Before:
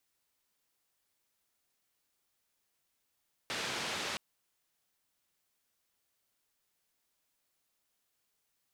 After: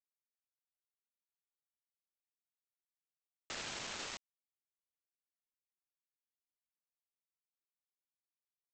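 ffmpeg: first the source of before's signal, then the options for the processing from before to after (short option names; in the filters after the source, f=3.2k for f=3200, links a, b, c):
-f lavfi -i "anoisesrc=c=white:d=0.67:r=44100:seed=1,highpass=f=110,lowpass=f=4200,volume=-25.7dB"
-af "alimiter=level_in=12dB:limit=-24dB:level=0:latency=1:release=186,volume=-12dB,aresample=16000,acrusher=bits=6:mix=0:aa=0.000001,aresample=44100"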